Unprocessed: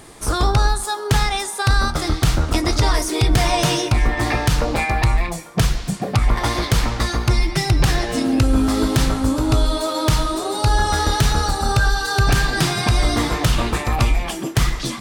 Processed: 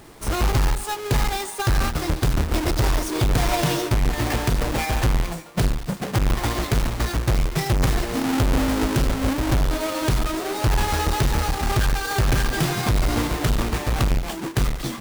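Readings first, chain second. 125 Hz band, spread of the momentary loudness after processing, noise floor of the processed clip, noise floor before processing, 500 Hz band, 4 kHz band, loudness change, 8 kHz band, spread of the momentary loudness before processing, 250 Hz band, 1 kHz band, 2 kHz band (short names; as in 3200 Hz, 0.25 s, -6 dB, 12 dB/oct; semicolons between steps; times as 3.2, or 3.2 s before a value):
-3.5 dB, 4 LU, -33 dBFS, -29 dBFS, -3.0 dB, -6.0 dB, -3.5 dB, -4.5 dB, 4 LU, -3.5 dB, -5.0 dB, -5.0 dB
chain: half-waves squared off; gain -8 dB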